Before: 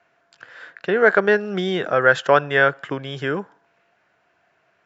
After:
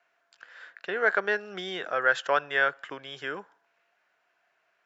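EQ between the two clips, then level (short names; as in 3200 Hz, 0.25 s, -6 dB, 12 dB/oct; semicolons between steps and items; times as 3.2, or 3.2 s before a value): HPF 920 Hz 6 dB/oct; -5.5 dB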